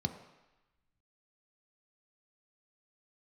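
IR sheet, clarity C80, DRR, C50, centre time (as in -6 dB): 11.5 dB, 6.0 dB, 10.0 dB, 15 ms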